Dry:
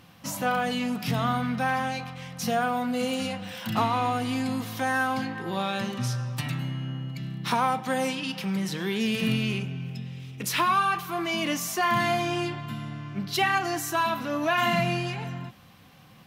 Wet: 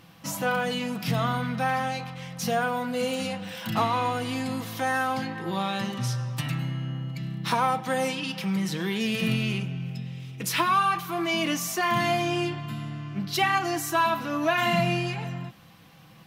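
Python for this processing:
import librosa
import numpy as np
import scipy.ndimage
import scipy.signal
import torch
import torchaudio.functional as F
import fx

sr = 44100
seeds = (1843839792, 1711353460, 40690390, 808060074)

y = x + 0.35 * np.pad(x, (int(6.1 * sr / 1000.0), 0))[:len(x)]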